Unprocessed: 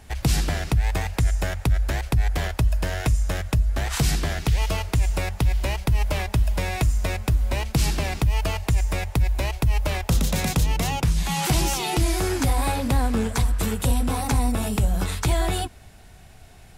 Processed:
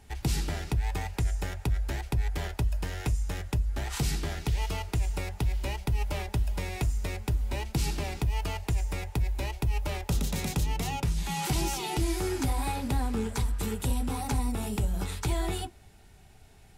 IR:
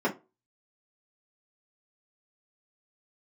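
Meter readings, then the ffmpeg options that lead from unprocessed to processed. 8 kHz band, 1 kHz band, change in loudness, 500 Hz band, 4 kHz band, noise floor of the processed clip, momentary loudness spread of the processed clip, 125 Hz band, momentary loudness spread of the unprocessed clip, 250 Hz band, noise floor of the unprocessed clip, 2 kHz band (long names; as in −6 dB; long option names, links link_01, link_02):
−7.5 dB, −7.0 dB, −7.5 dB, −7.0 dB, −7.5 dB, −54 dBFS, 3 LU, −7.5 dB, 2 LU, −6.5 dB, −46 dBFS, −8.5 dB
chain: -filter_complex "[0:a]asplit=2[link_01][link_02];[1:a]atrim=start_sample=2205,asetrate=79380,aresample=44100[link_03];[link_02][link_03]afir=irnorm=-1:irlink=0,volume=-15.5dB[link_04];[link_01][link_04]amix=inputs=2:normalize=0,volume=-7.5dB"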